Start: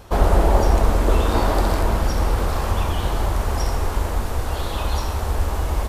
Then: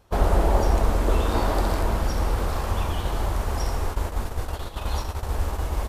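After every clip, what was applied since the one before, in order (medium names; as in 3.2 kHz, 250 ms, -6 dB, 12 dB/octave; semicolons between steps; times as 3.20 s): gate -22 dBFS, range -11 dB; trim -4 dB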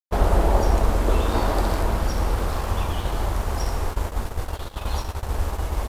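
crossover distortion -44 dBFS; trim +1.5 dB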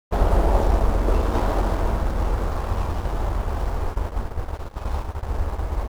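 median filter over 15 samples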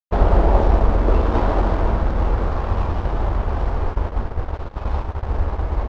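distance through air 170 m; trim +4 dB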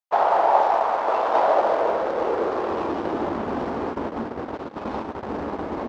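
high-pass sweep 780 Hz -> 250 Hz, 1.06–3.41 s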